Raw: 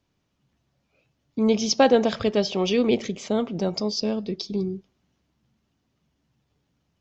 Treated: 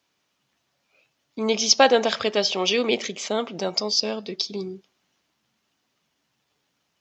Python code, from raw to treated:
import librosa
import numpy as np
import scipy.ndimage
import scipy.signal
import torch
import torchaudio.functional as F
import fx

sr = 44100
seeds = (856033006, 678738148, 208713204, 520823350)

y = fx.highpass(x, sr, hz=1100.0, slope=6)
y = F.gain(torch.from_numpy(y), 7.5).numpy()